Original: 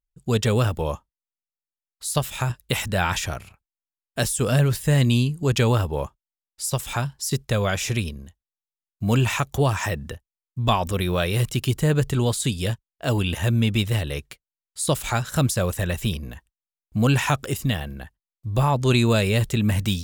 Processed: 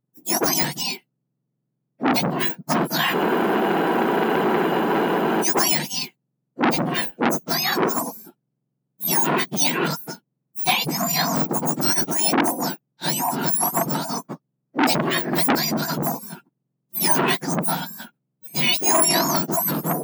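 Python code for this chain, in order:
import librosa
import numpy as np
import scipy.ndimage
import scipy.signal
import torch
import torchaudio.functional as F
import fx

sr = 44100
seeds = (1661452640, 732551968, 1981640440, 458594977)

y = fx.octave_mirror(x, sr, pivot_hz=1600.0)
y = fx.spec_freeze(y, sr, seeds[0], at_s=3.15, hold_s=2.27)
y = fx.transformer_sat(y, sr, knee_hz=1900.0)
y = y * librosa.db_to_amplitude(7.0)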